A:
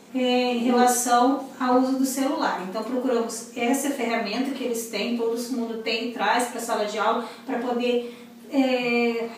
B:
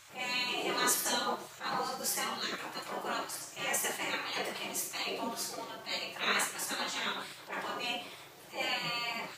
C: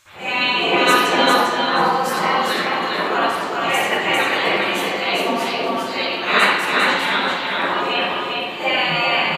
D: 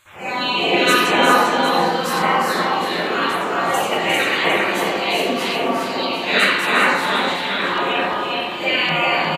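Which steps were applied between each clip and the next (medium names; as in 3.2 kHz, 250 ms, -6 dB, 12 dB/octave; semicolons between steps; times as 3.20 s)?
spectral gate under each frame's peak -15 dB weak; attacks held to a fixed rise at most 190 dB/s
multi-tap echo 400/879 ms -3.5/-19 dB; reverberation RT60 0.90 s, pre-delay 57 ms, DRR -17 dB
LFO notch saw down 0.9 Hz 610–5700 Hz; on a send: delay 355 ms -7 dB; on the sum: trim +1 dB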